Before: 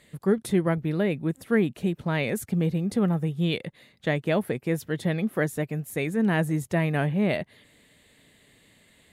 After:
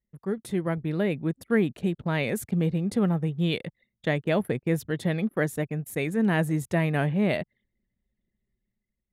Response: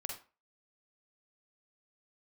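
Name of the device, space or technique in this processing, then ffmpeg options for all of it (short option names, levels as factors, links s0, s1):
voice memo with heavy noise removal: -filter_complex "[0:a]asettb=1/sr,asplit=3[s0][s1][s2];[s0]atrim=end=4.404[s3];[s1]atrim=start=4.4:end=4.91,asetpts=PTS-STARTPTS,afade=t=in:d=0.004:c=qsin,afade=t=out:st=0.506:d=0.004:c=qsin,lowshelf=f=150:g=5.5[s4];[s2]atrim=start=4.906[s5];[s3][s4]acrossfade=d=0.004:c1=hsin:c2=qsin[s6];[s6][s5]acrossfade=d=0.004:c1=qsin:c2=hsin,anlmdn=0.0398,dynaudnorm=f=160:g=9:m=2.37,volume=0.422"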